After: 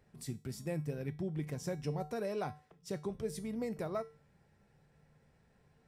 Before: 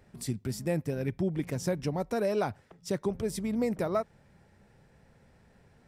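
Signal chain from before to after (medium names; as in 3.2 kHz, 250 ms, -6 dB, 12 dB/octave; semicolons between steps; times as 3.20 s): feedback comb 150 Hz, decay 0.36 s, harmonics odd, mix 70%; on a send: reverberation, pre-delay 3 ms, DRR 19 dB; on the sum: trim +1 dB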